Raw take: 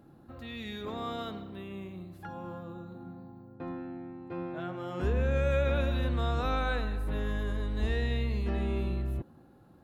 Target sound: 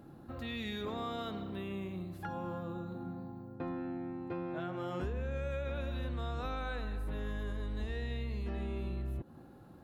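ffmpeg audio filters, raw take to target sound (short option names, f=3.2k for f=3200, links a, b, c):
-af "acompressor=threshold=-38dB:ratio=6,volume=3dB"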